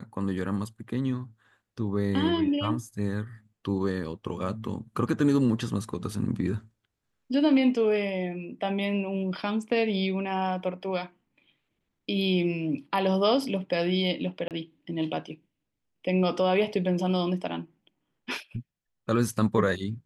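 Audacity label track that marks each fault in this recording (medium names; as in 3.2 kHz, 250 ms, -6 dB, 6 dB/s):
14.480000	14.510000	dropout 28 ms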